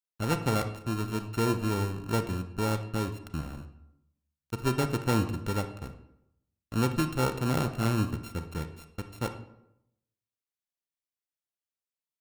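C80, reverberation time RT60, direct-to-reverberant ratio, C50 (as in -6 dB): 13.0 dB, 0.80 s, 8.0 dB, 10.5 dB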